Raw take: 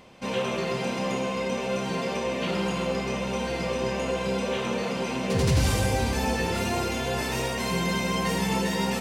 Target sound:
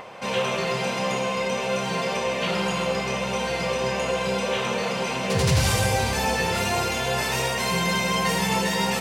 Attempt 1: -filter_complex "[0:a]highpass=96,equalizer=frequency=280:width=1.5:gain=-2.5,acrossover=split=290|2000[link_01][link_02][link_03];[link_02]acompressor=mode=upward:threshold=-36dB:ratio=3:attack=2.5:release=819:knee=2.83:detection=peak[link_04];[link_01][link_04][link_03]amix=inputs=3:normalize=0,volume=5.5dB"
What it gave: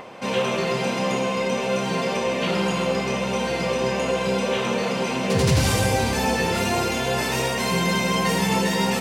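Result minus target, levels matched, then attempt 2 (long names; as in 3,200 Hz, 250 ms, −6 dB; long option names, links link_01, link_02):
250 Hz band +3.0 dB
-filter_complex "[0:a]highpass=96,equalizer=frequency=280:width=1.5:gain=-11.5,acrossover=split=290|2000[link_01][link_02][link_03];[link_02]acompressor=mode=upward:threshold=-36dB:ratio=3:attack=2.5:release=819:knee=2.83:detection=peak[link_04];[link_01][link_04][link_03]amix=inputs=3:normalize=0,volume=5.5dB"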